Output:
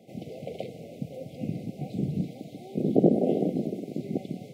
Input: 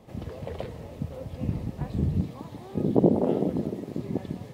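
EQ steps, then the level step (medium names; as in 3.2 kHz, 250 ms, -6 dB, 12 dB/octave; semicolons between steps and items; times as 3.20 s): high-pass 140 Hz 24 dB/octave; brick-wall FIR band-stop 800–2000 Hz; 0.0 dB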